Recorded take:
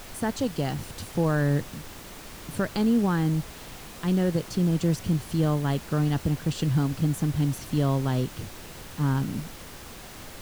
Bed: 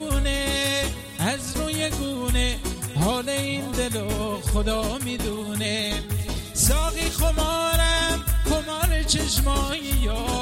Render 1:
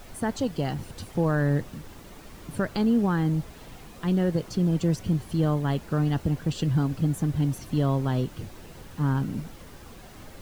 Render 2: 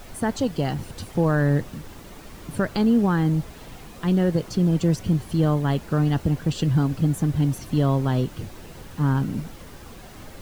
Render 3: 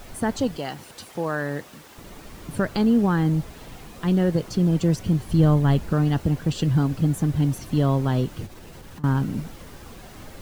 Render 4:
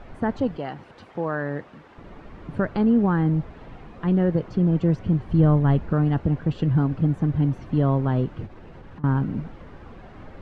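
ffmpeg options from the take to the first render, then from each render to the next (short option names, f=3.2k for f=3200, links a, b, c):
-af "afftdn=nr=8:nf=-43"
-af "volume=3.5dB"
-filter_complex "[0:a]asettb=1/sr,asplit=3[a][b][c];[a]atrim=end=0.574[d];[b]atrim=start=0.57:end=1.98,asetpts=PTS-STARTPTS,afade=t=in:d=0.004:c=qsin,afade=t=out:st=1.406:d=0.004:c=qsin,highpass=f=610:p=1[e];[c]atrim=start=1.976[f];[d][e]acrossfade=d=0.004:c1=hsin:c2=qsin[g];[g][f]acrossfade=d=0.004:c1=qsin:c2=hsin,asettb=1/sr,asplit=3[h][i][j];[h]atrim=end=5.284[k];[i]atrim=start=5.28:end=5.93,asetpts=PTS-STARTPTS,afade=t=in:d=0.004:c=qsin,afade=t=out:st=0.646:d=0.004:c=qsin,lowshelf=f=120:g=11[l];[j]atrim=start=5.926[m];[k][l]acrossfade=d=0.004:c1=hsin:c2=qsin[n];[n][m]acrossfade=d=0.004:c1=qsin:c2=hsin,asettb=1/sr,asplit=3[o][p][q];[o]atrim=end=8.464[r];[p]atrim=start=8.46:end=9.04,asetpts=PTS-STARTPTS,afade=t=in:d=0.004:c=qsin,afade=t=out:st=0.576:d=0.004:c=qsin,acompressor=threshold=-37dB:ratio=12:attack=3.2:release=140:knee=1:detection=peak[s];[q]atrim=start=9.036[t];[r][s]acrossfade=d=0.004:c1=hsin:c2=qsin[u];[u][t]acrossfade=d=0.004:c1=qsin:c2=hsin"
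-af "lowpass=1.9k"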